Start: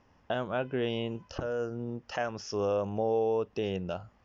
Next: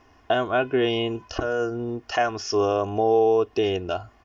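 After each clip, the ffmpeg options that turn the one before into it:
-af "lowshelf=f=260:g=-4,aecho=1:1:2.8:0.69,volume=2.66"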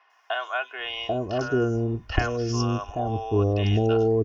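-filter_complex "[0:a]asubboost=boost=7.5:cutoff=200,acrossover=split=730|4400[s0][s1][s2];[s2]adelay=100[s3];[s0]adelay=790[s4];[s4][s1][s3]amix=inputs=3:normalize=0"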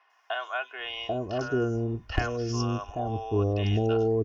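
-af "asoftclip=type=hard:threshold=0.299,volume=0.668"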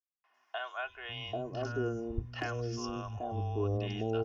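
-filter_complex "[0:a]acrossover=split=180[s0][s1];[s1]adelay=240[s2];[s0][s2]amix=inputs=2:normalize=0,volume=0.473"

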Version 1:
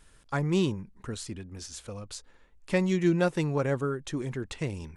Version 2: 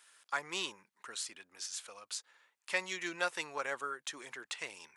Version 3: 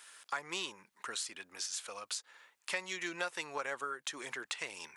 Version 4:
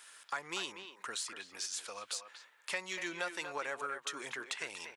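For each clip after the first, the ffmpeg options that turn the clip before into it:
-af "highpass=1100,volume=1.12"
-af "acompressor=threshold=0.00501:ratio=2.5,volume=2.37"
-filter_complex "[0:a]asplit=2[s0][s1];[s1]asoftclip=type=tanh:threshold=0.02,volume=0.251[s2];[s0][s2]amix=inputs=2:normalize=0,asplit=2[s3][s4];[s4]adelay=240,highpass=300,lowpass=3400,asoftclip=type=hard:threshold=0.0473,volume=0.398[s5];[s3][s5]amix=inputs=2:normalize=0,volume=0.794"

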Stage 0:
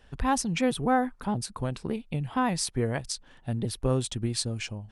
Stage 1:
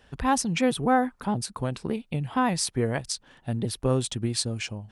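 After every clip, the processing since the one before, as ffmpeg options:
-af "highpass=f=76:p=1,volume=1.33"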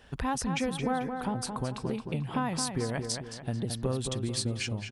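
-filter_complex "[0:a]acompressor=threshold=0.0251:ratio=3,asplit=2[s0][s1];[s1]adelay=220,lowpass=f=3800:p=1,volume=0.501,asplit=2[s2][s3];[s3]adelay=220,lowpass=f=3800:p=1,volume=0.45,asplit=2[s4][s5];[s5]adelay=220,lowpass=f=3800:p=1,volume=0.45,asplit=2[s6][s7];[s7]adelay=220,lowpass=f=3800:p=1,volume=0.45,asplit=2[s8][s9];[s9]adelay=220,lowpass=f=3800:p=1,volume=0.45[s10];[s2][s4][s6][s8][s10]amix=inputs=5:normalize=0[s11];[s0][s11]amix=inputs=2:normalize=0,volume=1.19"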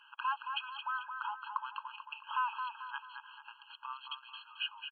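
-af "aresample=8000,aresample=44100,afftfilt=real='re*eq(mod(floor(b*sr/1024/820),2),1)':imag='im*eq(mod(floor(b*sr/1024/820),2),1)':win_size=1024:overlap=0.75,volume=1.41"

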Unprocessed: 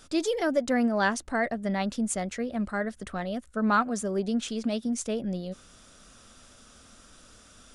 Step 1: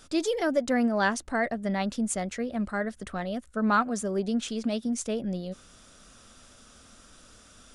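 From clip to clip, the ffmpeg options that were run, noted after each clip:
-af anull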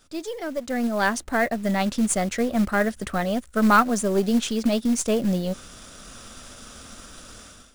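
-af "aeval=exprs='if(lt(val(0),0),0.708*val(0),val(0))':c=same,dynaudnorm=f=620:g=3:m=6.68,acrusher=bits=5:mode=log:mix=0:aa=0.000001,volume=0.596"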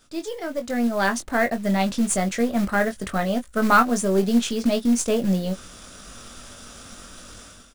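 -filter_complex "[0:a]asplit=2[s0][s1];[s1]adelay=21,volume=0.447[s2];[s0][s2]amix=inputs=2:normalize=0"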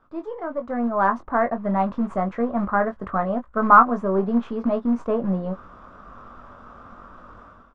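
-af "lowpass=f=1100:t=q:w=4,volume=0.75"

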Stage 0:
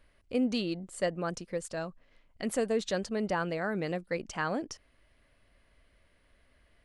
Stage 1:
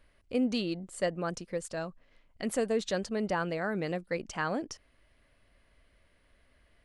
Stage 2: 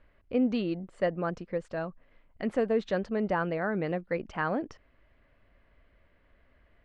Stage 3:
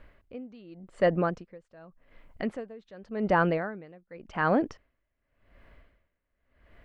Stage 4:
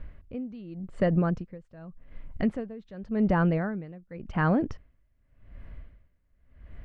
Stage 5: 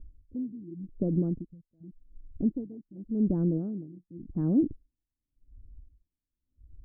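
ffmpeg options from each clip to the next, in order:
-af anull
-af "lowpass=2200,volume=1.33"
-filter_complex "[0:a]asplit=2[s0][s1];[s1]alimiter=level_in=1.33:limit=0.0631:level=0:latency=1,volume=0.75,volume=0.708[s2];[s0][s2]amix=inputs=2:normalize=0,aeval=exprs='val(0)*pow(10,-27*(0.5-0.5*cos(2*PI*0.88*n/s))/20)':c=same,volume=1.58"
-af "bass=f=250:g=14,treble=f=4000:g=-3,acompressor=threshold=0.1:ratio=6"
-af "afwtdn=0.0251,lowpass=f=310:t=q:w=3.5,volume=0.501"

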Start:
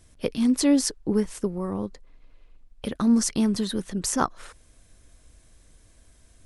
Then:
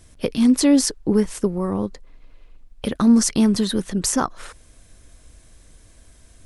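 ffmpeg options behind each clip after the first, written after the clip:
-af "alimiter=level_in=4.22:limit=0.891:release=50:level=0:latency=1,volume=0.473"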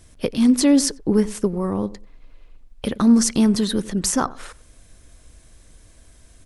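-filter_complex "[0:a]asplit=2[s0][s1];[s1]adelay=92,lowpass=f=850:p=1,volume=0.15,asplit=2[s2][s3];[s3]adelay=92,lowpass=f=850:p=1,volume=0.24[s4];[s0][s2][s4]amix=inputs=3:normalize=0"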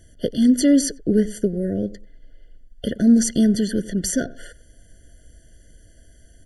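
-af "afftfilt=real='re*eq(mod(floor(b*sr/1024/700),2),0)':imag='im*eq(mod(floor(b*sr/1024/700),2),0)':win_size=1024:overlap=0.75"

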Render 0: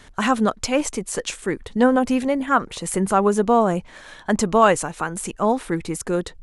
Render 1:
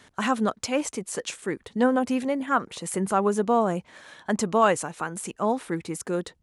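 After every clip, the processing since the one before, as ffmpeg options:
-af "highpass=110,volume=0.562"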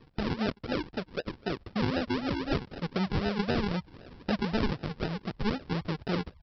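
-af "asubboost=boost=6.5:cutoff=130,acompressor=threshold=0.0447:ratio=3,aresample=11025,acrusher=samples=14:mix=1:aa=0.000001:lfo=1:lforange=8.4:lforate=3.9,aresample=44100"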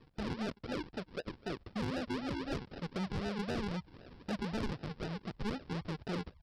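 -af "asoftclip=type=tanh:threshold=0.0531,volume=0.562"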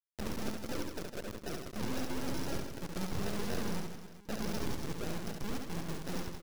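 -af "acrusher=bits=4:dc=4:mix=0:aa=0.000001,aecho=1:1:70|157.5|266.9|403.6|574.5:0.631|0.398|0.251|0.158|0.1,volume=1.33"

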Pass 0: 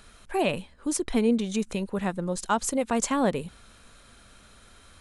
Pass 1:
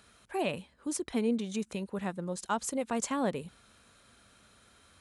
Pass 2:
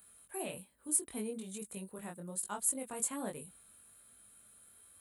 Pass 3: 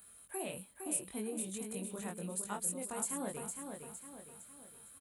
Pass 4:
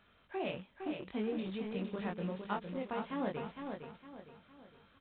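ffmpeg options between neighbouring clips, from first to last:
-af "highpass=75,volume=0.473"
-af "aexciter=amount=9.6:drive=8.1:freq=8400,flanger=delay=19.5:depth=4.3:speed=1.2,volume=0.447"
-filter_complex "[0:a]acompressor=threshold=0.00891:ratio=2,asplit=2[s0][s1];[s1]aecho=0:1:459|918|1377|1836|2295:0.501|0.221|0.097|0.0427|0.0188[s2];[s0][s2]amix=inputs=2:normalize=0,volume=1.33"
-filter_complex "[0:a]asplit=2[s0][s1];[s1]acrusher=bits=6:mix=0:aa=0.000001,volume=0.355[s2];[s0][s2]amix=inputs=2:normalize=0,volume=1.19" -ar 8000 -c:a pcm_mulaw

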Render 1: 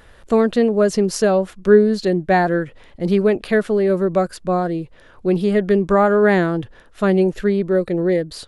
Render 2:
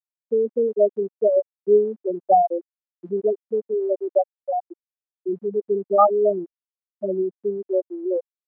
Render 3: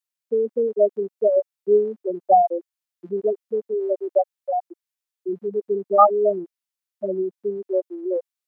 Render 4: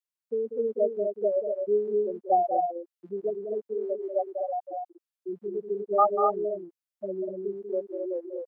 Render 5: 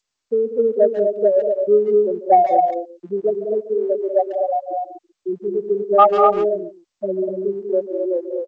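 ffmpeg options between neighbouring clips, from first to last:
-af "afftfilt=real='re*gte(hypot(re,im),1)':imag='im*gte(hypot(re,im),1)':win_size=1024:overlap=0.75,highpass=790,volume=2.37"
-af "tiltshelf=f=970:g=-5,volume=1.33"
-af "aecho=1:1:192.4|244.9:0.398|0.562,volume=0.398"
-filter_complex "[0:a]acontrast=75,asplit=2[s0][s1];[s1]adelay=140,highpass=300,lowpass=3400,asoftclip=type=hard:threshold=0.211,volume=0.2[s2];[s0][s2]amix=inputs=2:normalize=0,volume=1.5" -ar 16000 -c:a g722

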